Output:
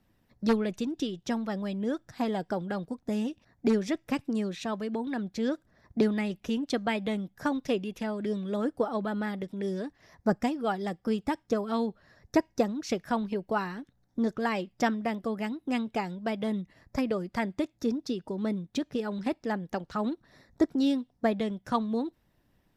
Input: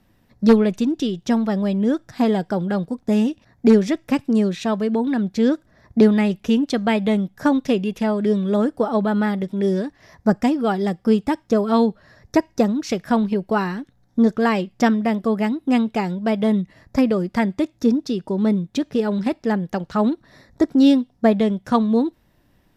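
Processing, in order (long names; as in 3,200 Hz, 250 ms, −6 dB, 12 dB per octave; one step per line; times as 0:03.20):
harmonic and percussive parts rebalanced harmonic −6 dB
level −6.5 dB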